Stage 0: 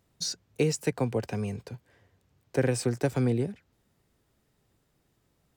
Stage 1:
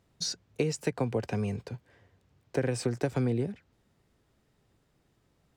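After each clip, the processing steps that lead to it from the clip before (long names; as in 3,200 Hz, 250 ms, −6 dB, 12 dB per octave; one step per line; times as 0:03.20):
high-shelf EQ 9,500 Hz −11.5 dB
downward compressor 5 to 1, threshold −26 dBFS, peak gain reduction 6.5 dB
level +1.5 dB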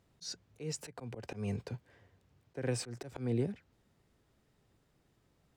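volume swells 177 ms
level −2 dB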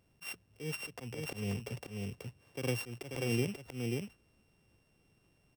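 samples sorted by size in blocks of 16 samples
on a send: single-tap delay 537 ms −3.5 dB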